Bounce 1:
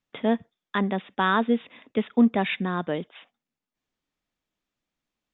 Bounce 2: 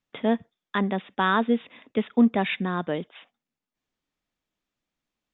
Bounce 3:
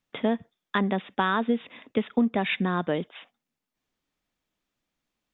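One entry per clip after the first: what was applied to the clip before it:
nothing audible
compressor 6:1, threshold -22 dBFS, peak gain reduction 8 dB; gain +2.5 dB

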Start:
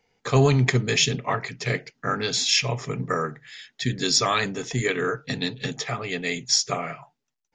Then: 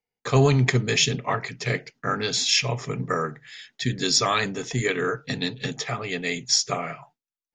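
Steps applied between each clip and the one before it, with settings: gate with hold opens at -43 dBFS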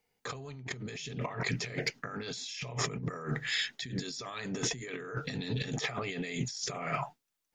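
limiter -16 dBFS, peak gain reduction 9.5 dB; negative-ratio compressor -39 dBFS, ratio -1; hard clip -21.5 dBFS, distortion -39 dB; gain +1 dB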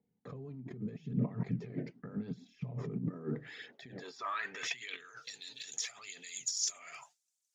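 in parallel at 0 dB: limiter -27.5 dBFS, peak gain reduction 7 dB; on the sum: band-pass sweep 200 Hz -> 7000 Hz, 3.15–5.35; phaser 0.81 Hz, delay 3.5 ms, feedback 42%; gain +1.5 dB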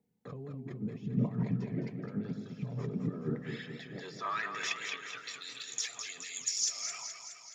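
warbling echo 0.211 s, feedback 60%, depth 72 cents, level -7 dB; gain +2 dB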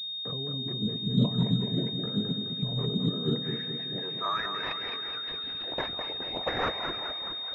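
pulse-width modulation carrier 3700 Hz; gain +6 dB

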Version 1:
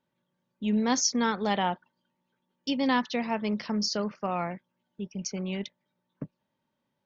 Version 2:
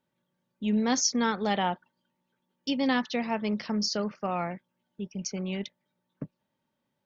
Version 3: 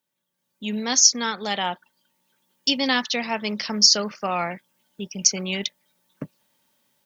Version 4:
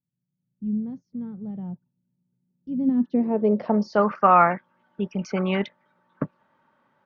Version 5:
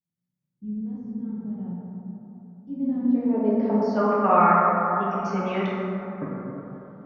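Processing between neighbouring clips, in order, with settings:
notch 1000 Hz, Q 15
high shelf 3200 Hz +8 dB; AGC gain up to 14 dB; tilt +2 dB/oct; gain -5.5 dB
limiter -12.5 dBFS, peak gain reduction 11 dB; low-pass sweep 140 Hz -> 1300 Hz, 2.6–4.16; gain +5.5 dB
plate-style reverb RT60 3.4 s, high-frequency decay 0.3×, DRR -7.5 dB; gain -8.5 dB

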